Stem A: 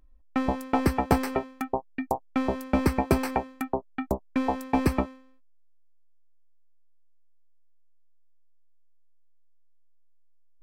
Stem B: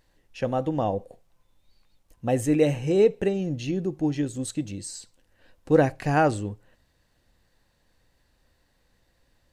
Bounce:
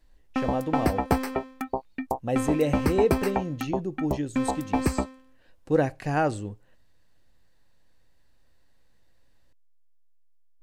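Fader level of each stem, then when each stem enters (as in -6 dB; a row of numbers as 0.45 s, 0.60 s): -1.0 dB, -3.5 dB; 0.00 s, 0.00 s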